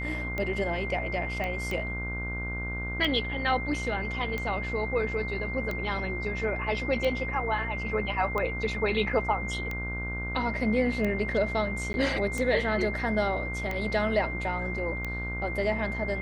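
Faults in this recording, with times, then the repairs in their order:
buzz 60 Hz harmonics 26 -35 dBFS
tick 45 rpm -19 dBFS
tone 2100 Hz -34 dBFS
1.44 pop -20 dBFS
11.93–11.94 gap 11 ms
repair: de-click; de-hum 60 Hz, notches 26; notch 2100 Hz, Q 30; interpolate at 11.93, 11 ms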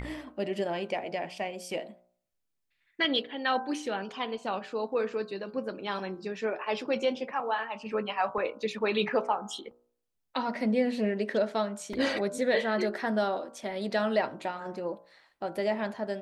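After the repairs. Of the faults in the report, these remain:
none

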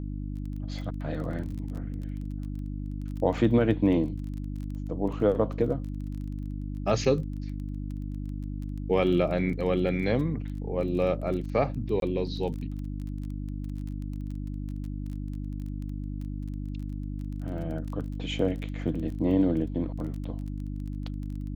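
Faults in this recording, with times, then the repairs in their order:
crackle 20/s -36 dBFS
hum 50 Hz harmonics 6 -34 dBFS
12–12.02 gap 22 ms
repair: de-click; de-hum 50 Hz, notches 6; interpolate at 12, 22 ms

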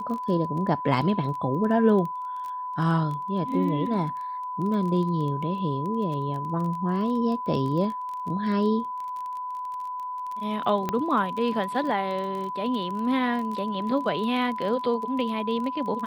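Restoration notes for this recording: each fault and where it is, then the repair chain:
crackle 21/s -32 dBFS
tone 1000 Hz -30 dBFS
10.89 pop -13 dBFS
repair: de-click; notch 1000 Hz, Q 30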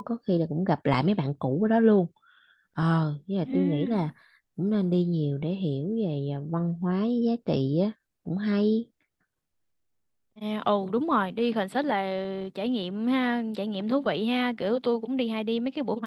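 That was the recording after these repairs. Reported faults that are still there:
none

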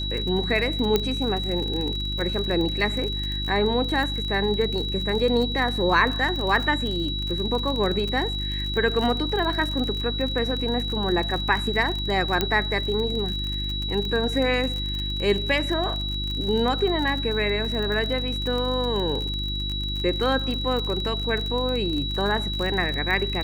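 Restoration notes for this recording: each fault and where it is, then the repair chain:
crackle 38/s -27 dBFS
hum 50 Hz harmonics 7 -30 dBFS
tone 3900 Hz -29 dBFS
0.96 pop -7 dBFS
12.41 pop -7 dBFS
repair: de-click; de-hum 50 Hz, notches 7; notch 3900 Hz, Q 30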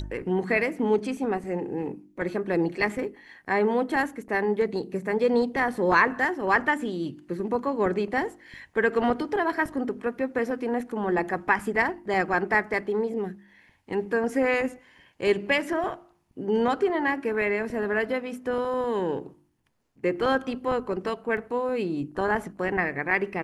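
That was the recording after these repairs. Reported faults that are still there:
none

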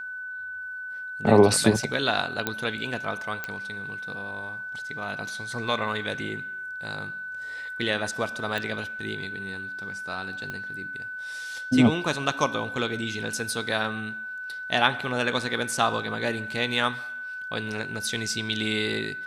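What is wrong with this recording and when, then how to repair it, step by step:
tone 1500 Hz -33 dBFS
2.47 pop -10 dBFS
3.44 pop -16 dBFS
8.58 pop
10.5 pop -20 dBFS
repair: de-click; notch 1500 Hz, Q 30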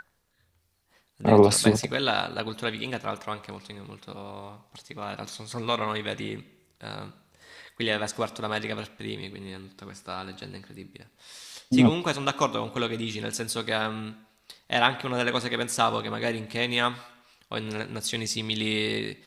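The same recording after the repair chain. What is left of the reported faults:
10.5 pop

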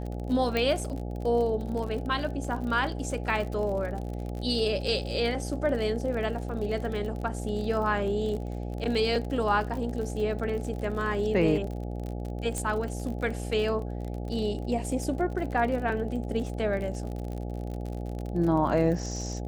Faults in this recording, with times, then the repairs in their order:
buzz 60 Hz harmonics 14 -34 dBFS
crackle 49/s -34 dBFS
0.57 pop -15 dBFS
12.58 pop -18 dBFS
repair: de-click; de-hum 60 Hz, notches 14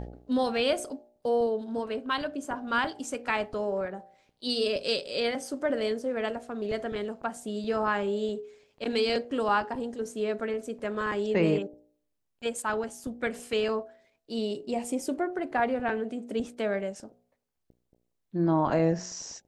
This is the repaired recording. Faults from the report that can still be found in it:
0.57 pop
12.58 pop

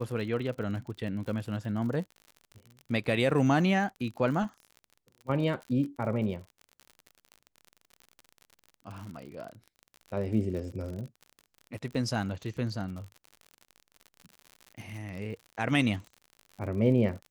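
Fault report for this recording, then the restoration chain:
crackle 54/s -38 dBFS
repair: de-click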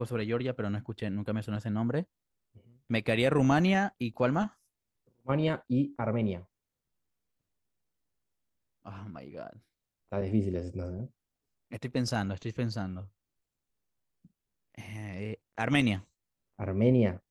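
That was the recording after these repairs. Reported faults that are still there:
none

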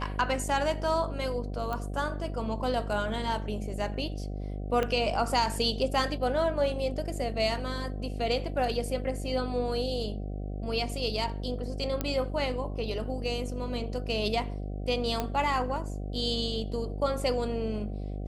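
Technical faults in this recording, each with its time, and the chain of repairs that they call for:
buzz 50 Hz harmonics 15 -35 dBFS
1.73 pop -20 dBFS
4.83 pop -16 dBFS
12.01 pop -14 dBFS
15.2 pop -15 dBFS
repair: de-click; de-hum 50 Hz, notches 15

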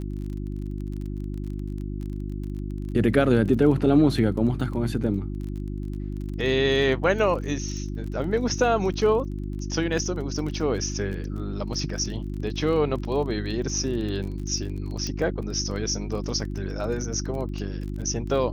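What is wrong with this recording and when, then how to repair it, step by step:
crackle 25/s -33 dBFS
hum 50 Hz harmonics 7 -31 dBFS
15.07 pop -18 dBFS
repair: de-click; de-hum 50 Hz, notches 7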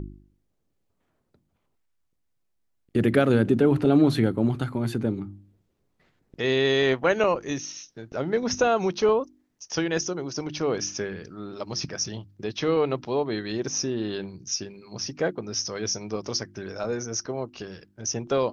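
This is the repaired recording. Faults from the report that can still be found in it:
none

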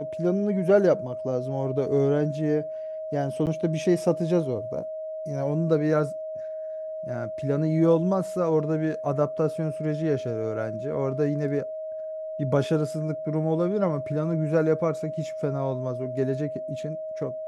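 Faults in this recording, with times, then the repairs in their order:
tone 630 Hz -31 dBFS
3.46–3.47 gap 8.7 ms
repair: notch 630 Hz, Q 30; interpolate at 3.46, 8.7 ms

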